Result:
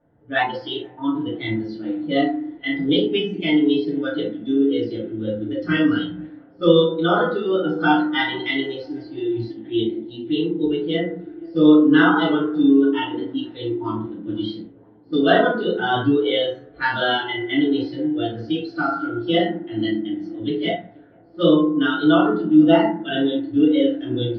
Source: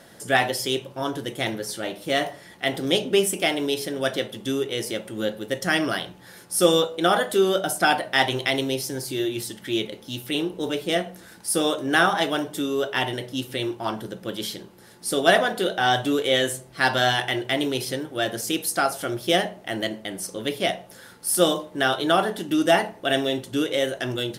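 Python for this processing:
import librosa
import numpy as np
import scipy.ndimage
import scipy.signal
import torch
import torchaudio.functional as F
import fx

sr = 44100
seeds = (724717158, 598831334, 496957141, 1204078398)

p1 = scipy.signal.sosfilt(scipy.signal.butter(8, 4000.0, 'lowpass', fs=sr, output='sos'), x)
p2 = fx.low_shelf(p1, sr, hz=150.0, db=11.5)
p3 = p2 + fx.echo_tape(p2, sr, ms=484, feedback_pct=81, wet_db=-14.5, lp_hz=1100.0, drive_db=8.0, wow_cents=29, dry=0)
p4 = fx.rev_fdn(p3, sr, rt60_s=0.86, lf_ratio=1.25, hf_ratio=0.45, size_ms=20.0, drr_db=-7.0)
p5 = fx.noise_reduce_blind(p4, sr, reduce_db=15)
p6 = fx.env_lowpass(p5, sr, base_hz=1000.0, full_db=-16.5)
y = p6 * librosa.db_to_amplitude(-6.0)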